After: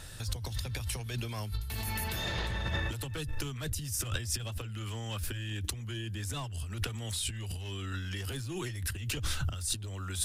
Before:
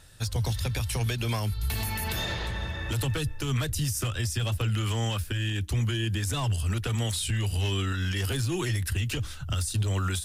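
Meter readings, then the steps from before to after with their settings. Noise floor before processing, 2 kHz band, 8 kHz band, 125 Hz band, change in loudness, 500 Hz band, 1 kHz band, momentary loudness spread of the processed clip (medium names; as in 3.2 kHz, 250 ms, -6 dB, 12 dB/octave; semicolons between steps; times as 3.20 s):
-37 dBFS, -5.0 dB, -2.5 dB, -9.0 dB, -7.0 dB, -7.5 dB, -6.5 dB, 5 LU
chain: compressor with a negative ratio -36 dBFS, ratio -1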